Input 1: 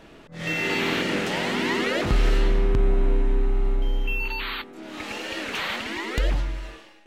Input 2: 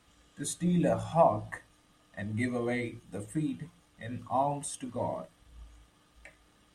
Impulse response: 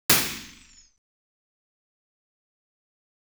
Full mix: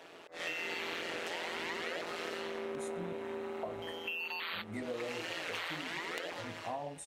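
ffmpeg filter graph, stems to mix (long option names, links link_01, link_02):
-filter_complex "[0:a]highpass=frequency=380:width=0.5412,highpass=frequency=380:width=1.3066,tremolo=f=170:d=0.75,volume=1dB[link_01];[1:a]equalizer=frequency=500:width=1.9:gain=12,flanger=delay=4.1:depth=4.9:regen=-68:speed=0.82:shape=sinusoidal,adelay=2350,volume=-5dB,asplit=3[link_02][link_03][link_04];[link_02]atrim=end=3.13,asetpts=PTS-STARTPTS,afade=type=out:start_time=3.126:duration=0.004:curve=hsin[link_05];[link_03]atrim=start=3.13:end=3.63,asetpts=PTS-STARTPTS,volume=0[link_06];[link_04]atrim=start=3.63,asetpts=PTS-STARTPTS,afade=type=in:duration=0.004:curve=hsin[link_07];[link_05][link_06][link_07]concat=n=3:v=0:a=1[link_08];[link_01][link_08]amix=inputs=2:normalize=0,acompressor=threshold=-36dB:ratio=6"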